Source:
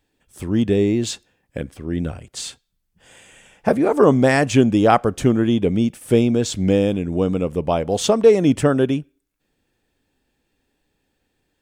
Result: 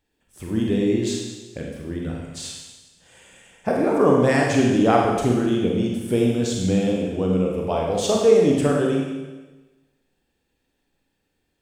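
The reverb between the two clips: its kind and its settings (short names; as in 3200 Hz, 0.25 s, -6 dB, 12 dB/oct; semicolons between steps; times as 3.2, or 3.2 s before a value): Schroeder reverb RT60 1.2 s, combs from 33 ms, DRR -1.5 dB; gain -6 dB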